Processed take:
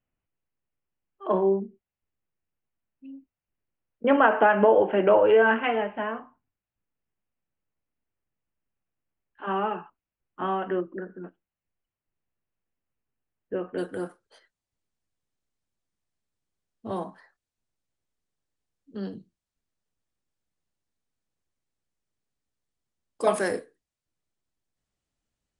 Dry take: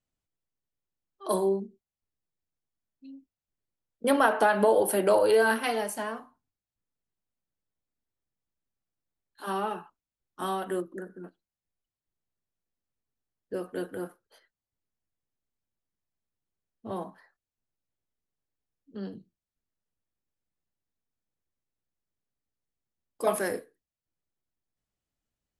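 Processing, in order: steep low-pass 3000 Hz 72 dB/oct, from 13.77 s 9900 Hz; gain +3.5 dB

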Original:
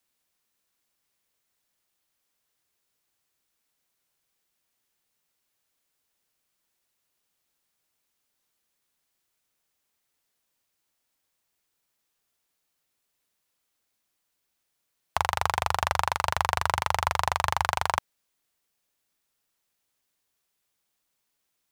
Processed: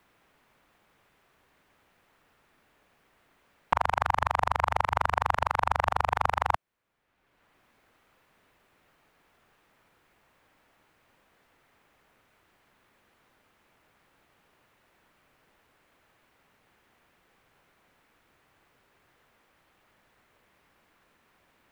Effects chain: whole clip reversed; three-band squash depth 70%

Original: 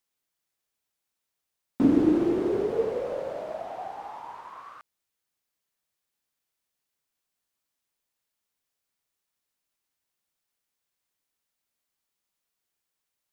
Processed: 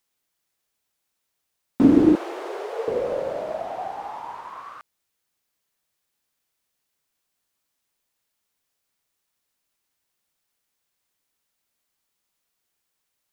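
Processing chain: 2.15–2.88 HPF 590 Hz 24 dB/oct; gain +5.5 dB

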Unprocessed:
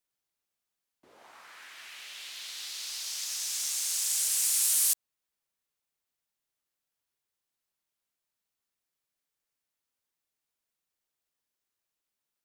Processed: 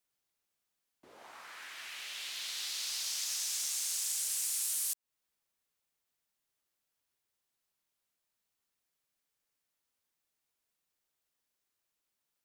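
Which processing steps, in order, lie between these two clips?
compressor 5:1, threshold -34 dBFS, peak gain reduction 11 dB; gain +1.5 dB

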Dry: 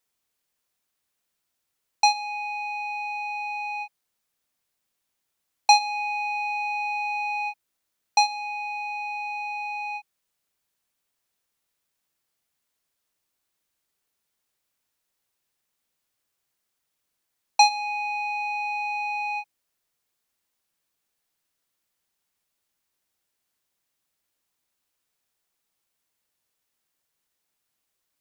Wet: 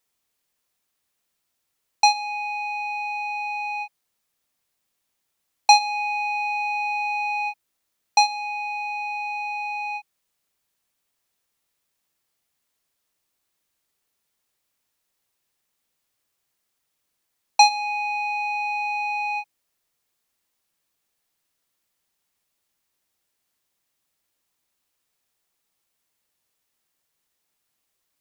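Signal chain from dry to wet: notch 1500 Hz, Q 29; gain +2.5 dB

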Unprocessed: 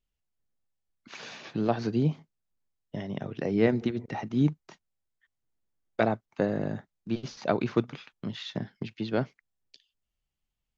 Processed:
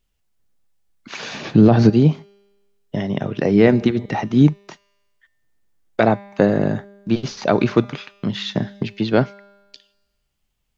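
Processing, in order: resonator 200 Hz, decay 1.2 s, mix 50%; 1.34–1.9 low shelf 380 Hz +12 dB; maximiser +18.5 dB; gain -1 dB

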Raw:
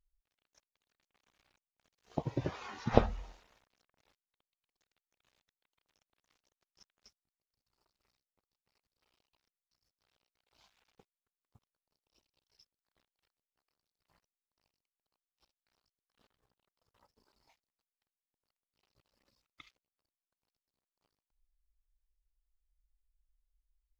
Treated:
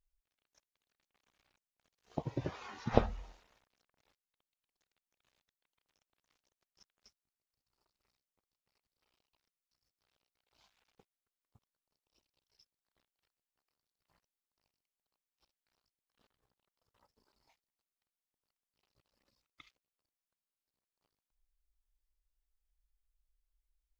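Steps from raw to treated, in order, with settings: stuck buffer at 20.38, samples 1024, times 9; gain -2.5 dB

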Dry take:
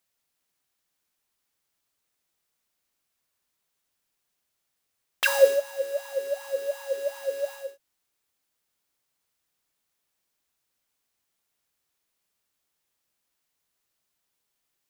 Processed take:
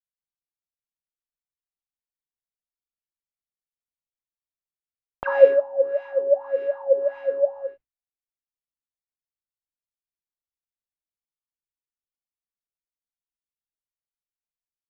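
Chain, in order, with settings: LFO low-pass sine 1.7 Hz 670–2400 Hz; tilt -5 dB/oct; expander -35 dBFS

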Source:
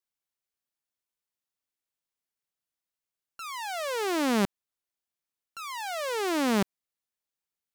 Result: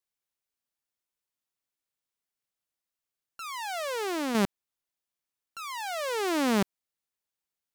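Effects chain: 3.77–4.35 compressor 4:1, threshold -29 dBFS, peak gain reduction 5.5 dB

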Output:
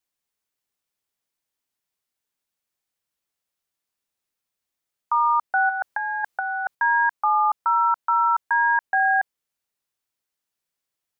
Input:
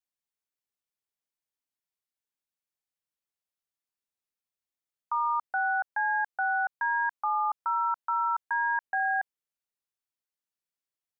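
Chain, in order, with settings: 5.69–6.75 negative-ratio compressor -32 dBFS, ratio -0.5; gain +8 dB

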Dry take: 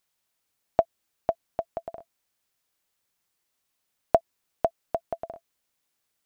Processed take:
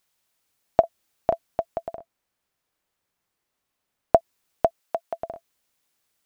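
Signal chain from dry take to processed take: 0.8–1.45 doubler 35 ms -7 dB; 1.96–4.16 high shelf 2600 Hz -9 dB; 4.8–5.2 HPF 640 Hz 6 dB/oct; gain +4 dB

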